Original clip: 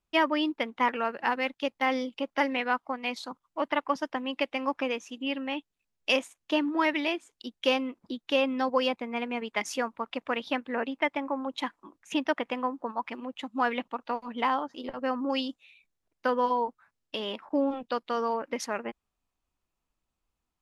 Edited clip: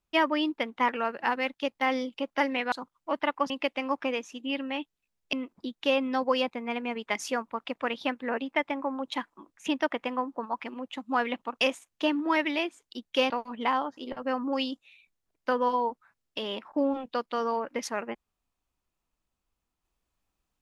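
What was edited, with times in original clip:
2.72–3.21 cut
3.99–4.27 cut
6.1–7.79 move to 14.07

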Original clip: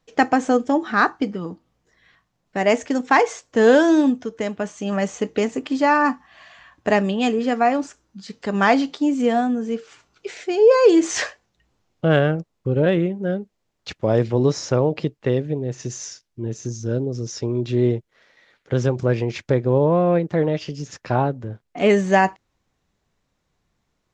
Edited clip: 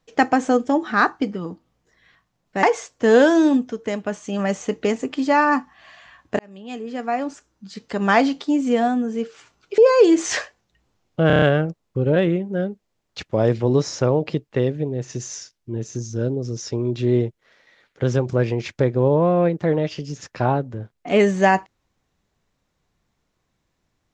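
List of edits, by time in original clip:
2.63–3.16 cut
6.92–8.33 fade in
10.31–10.63 cut
12.12 stutter 0.03 s, 6 plays

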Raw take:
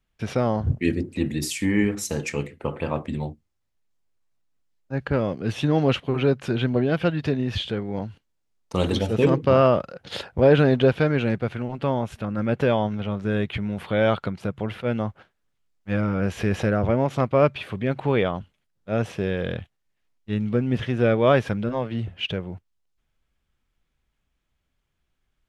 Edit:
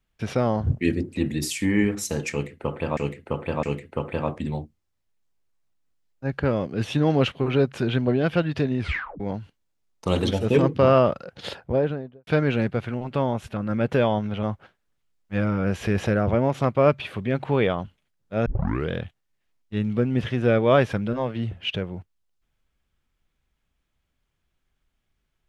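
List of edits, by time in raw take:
2.31–2.97 loop, 3 plays
7.47 tape stop 0.41 s
9.99–10.95 studio fade out
13.11–14.99 cut
19.02 tape start 0.44 s

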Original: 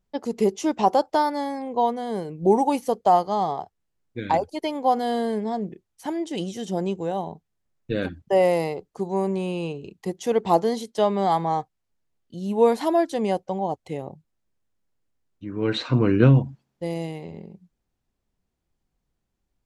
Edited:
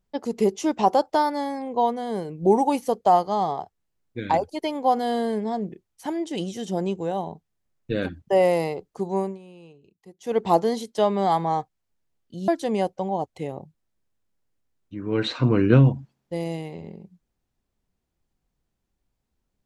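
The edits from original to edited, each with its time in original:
9.18–10.39 dip -18.5 dB, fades 0.20 s
12.48–12.98 cut

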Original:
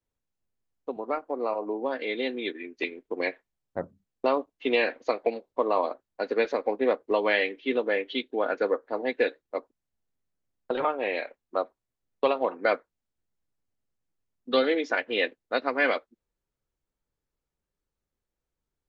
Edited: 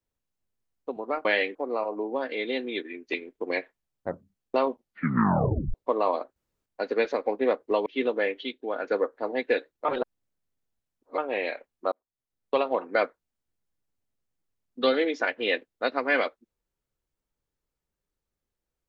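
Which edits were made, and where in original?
4.31 tape stop 1.13 s
6.06 insert room tone 0.30 s
7.26–7.56 move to 1.25
8.11–8.54 gain -4 dB
9.55–10.88 reverse
11.62–12.33 fade in

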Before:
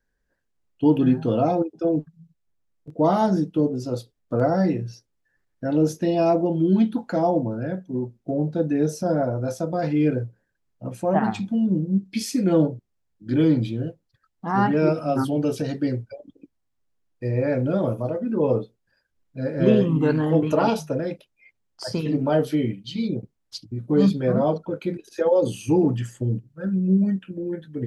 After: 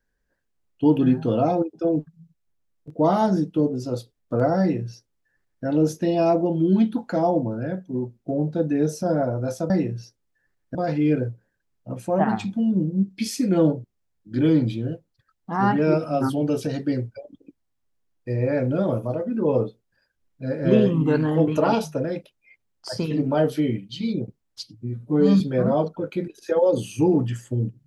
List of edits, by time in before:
4.6–5.65 copy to 9.7
23.59–24.1 stretch 1.5×

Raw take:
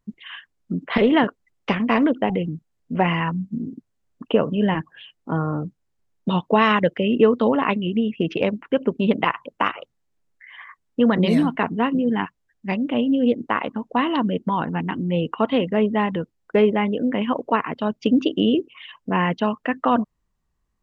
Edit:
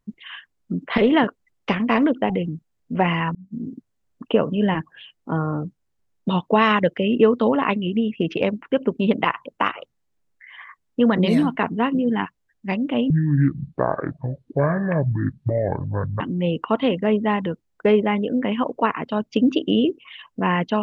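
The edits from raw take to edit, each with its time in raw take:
3.35–3.67 fade in linear
13.1–14.9 speed 58%

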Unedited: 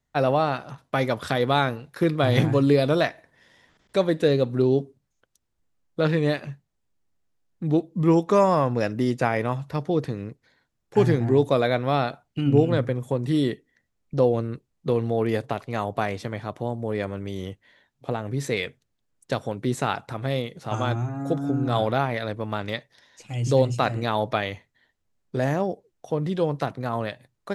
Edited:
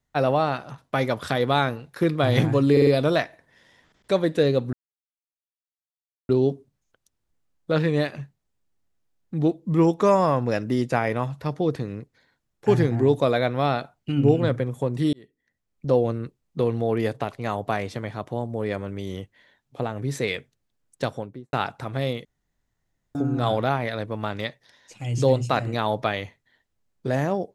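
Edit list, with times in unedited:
2.72 stutter 0.05 s, 4 plays
4.58 insert silence 1.56 s
13.42–14.24 fade in
19.33–19.82 studio fade out
20.54–21.44 room tone

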